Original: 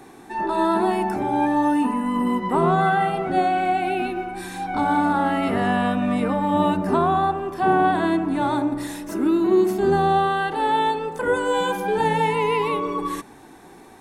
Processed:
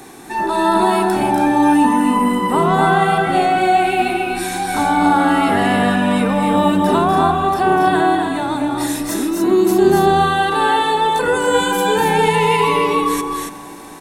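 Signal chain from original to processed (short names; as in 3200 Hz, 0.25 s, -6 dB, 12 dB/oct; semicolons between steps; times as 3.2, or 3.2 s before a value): high shelf 3200 Hz +9 dB; in parallel at -1 dB: limiter -17.5 dBFS, peak gain reduction 9.5 dB; 8–9.42 on the sum: compressor, threshold -18 dBFS, peak gain reduction 6 dB; loudspeakers at several distances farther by 84 m -6 dB, 96 m -5 dB; reverb RT60 5.3 s, pre-delay 0.117 s, DRR 19.5 dB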